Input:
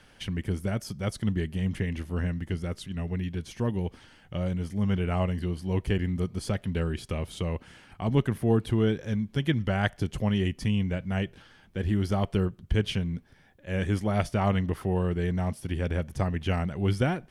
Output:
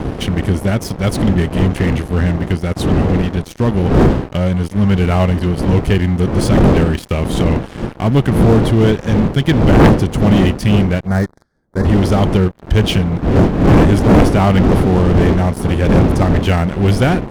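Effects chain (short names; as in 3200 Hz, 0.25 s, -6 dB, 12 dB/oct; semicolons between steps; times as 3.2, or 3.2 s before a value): wind noise 290 Hz -26 dBFS; sample leveller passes 5; 11.07–11.85 Butterworth band-stop 2800 Hz, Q 1.2; added harmonics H 3 -18 dB, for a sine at -1.5 dBFS; gain -1.5 dB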